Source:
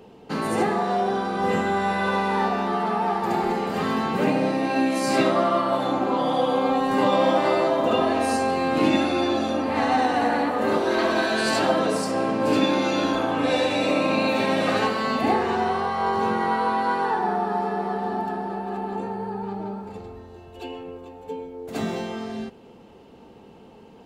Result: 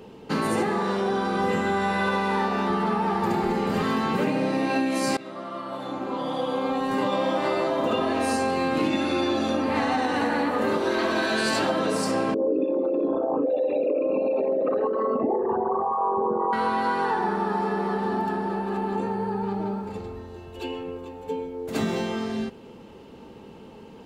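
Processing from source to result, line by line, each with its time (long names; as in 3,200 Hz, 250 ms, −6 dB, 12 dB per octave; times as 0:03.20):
0:02.70–0:03.82: low-shelf EQ 200 Hz +7.5 dB
0:05.17–0:08.41: fade in, from −23 dB
0:12.34–0:16.53: spectral envelope exaggerated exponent 3
whole clip: parametric band 700 Hz −2 dB; notch filter 720 Hz, Q 12; downward compressor, threshold −24 dBFS; level +3.5 dB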